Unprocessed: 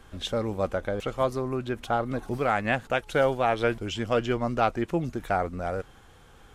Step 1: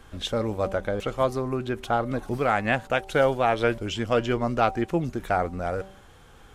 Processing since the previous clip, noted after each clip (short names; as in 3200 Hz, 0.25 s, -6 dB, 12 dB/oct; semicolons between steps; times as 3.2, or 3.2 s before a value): de-hum 192.5 Hz, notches 5; gain +2 dB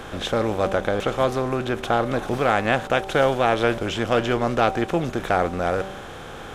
per-bin compression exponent 0.6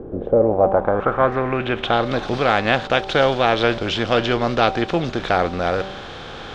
low-pass sweep 390 Hz -> 4400 Hz, 0.11–2.07; gain +2 dB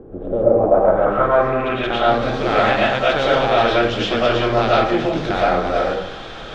digital reverb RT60 0.64 s, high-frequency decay 0.5×, pre-delay 70 ms, DRR -7 dB; gain -6 dB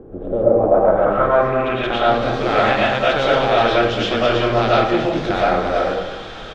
echo 0.217 s -12.5 dB